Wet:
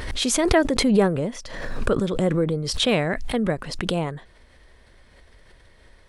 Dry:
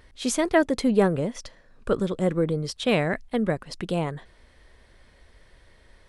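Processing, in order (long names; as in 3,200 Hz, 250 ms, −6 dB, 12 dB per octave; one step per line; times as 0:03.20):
background raised ahead of every attack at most 41 dB per second
level +1 dB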